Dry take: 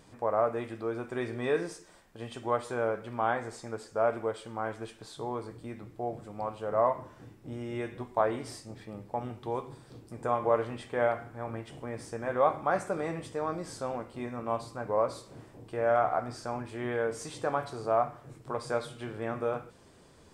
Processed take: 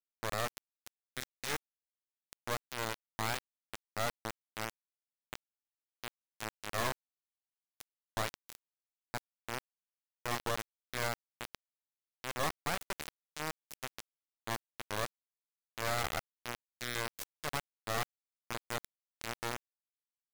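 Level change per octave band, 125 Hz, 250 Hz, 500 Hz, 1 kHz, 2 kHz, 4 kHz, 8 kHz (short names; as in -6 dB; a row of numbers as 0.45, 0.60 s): -5.5, -11.0, -14.0, -9.0, -0.5, +7.0, +5.0 dB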